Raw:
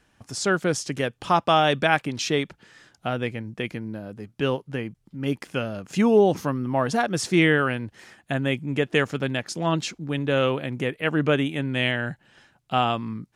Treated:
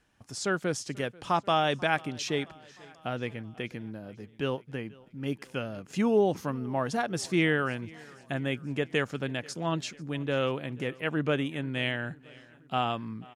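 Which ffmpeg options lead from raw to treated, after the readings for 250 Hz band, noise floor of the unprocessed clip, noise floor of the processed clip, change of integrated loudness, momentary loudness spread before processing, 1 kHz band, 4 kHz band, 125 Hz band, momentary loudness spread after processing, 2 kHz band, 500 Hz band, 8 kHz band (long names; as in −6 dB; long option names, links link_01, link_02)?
−6.5 dB, −68 dBFS, −56 dBFS, −6.5 dB, 13 LU, −6.5 dB, −6.5 dB, −6.5 dB, 14 LU, −6.5 dB, −6.5 dB, −6.5 dB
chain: -af "aecho=1:1:488|976|1464|1952:0.0668|0.0401|0.0241|0.0144,volume=-6.5dB"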